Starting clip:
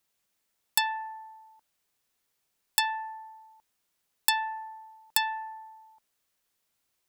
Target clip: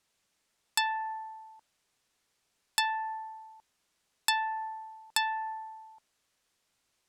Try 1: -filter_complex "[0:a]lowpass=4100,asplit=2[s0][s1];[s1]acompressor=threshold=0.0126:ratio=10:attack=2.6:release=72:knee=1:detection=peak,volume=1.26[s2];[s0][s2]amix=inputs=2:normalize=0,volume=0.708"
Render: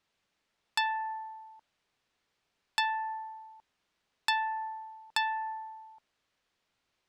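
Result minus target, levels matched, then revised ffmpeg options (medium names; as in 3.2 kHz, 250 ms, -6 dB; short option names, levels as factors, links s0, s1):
8 kHz band -9.5 dB
-filter_complex "[0:a]lowpass=8800,asplit=2[s0][s1];[s1]acompressor=threshold=0.0126:ratio=10:attack=2.6:release=72:knee=1:detection=peak,volume=1.26[s2];[s0][s2]amix=inputs=2:normalize=0,volume=0.708"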